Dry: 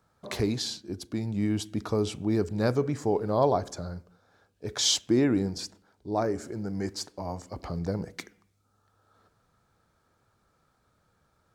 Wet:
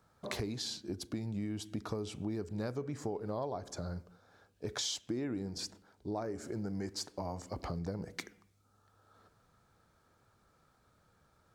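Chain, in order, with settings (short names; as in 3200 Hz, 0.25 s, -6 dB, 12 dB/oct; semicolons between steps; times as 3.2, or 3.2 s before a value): compressor 6:1, threshold -35 dBFS, peak gain reduction 16 dB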